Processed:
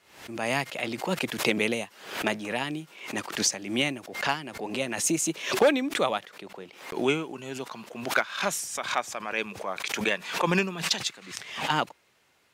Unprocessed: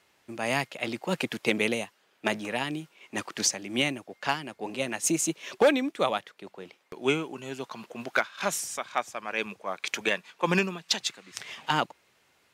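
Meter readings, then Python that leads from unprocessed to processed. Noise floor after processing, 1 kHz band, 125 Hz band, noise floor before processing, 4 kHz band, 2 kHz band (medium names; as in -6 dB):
-64 dBFS, +1.0 dB, +1.0 dB, -67 dBFS, +1.5 dB, +1.5 dB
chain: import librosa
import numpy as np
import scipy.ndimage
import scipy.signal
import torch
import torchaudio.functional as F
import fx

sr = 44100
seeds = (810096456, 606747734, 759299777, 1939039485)

y = fx.pre_swell(x, sr, db_per_s=92.0)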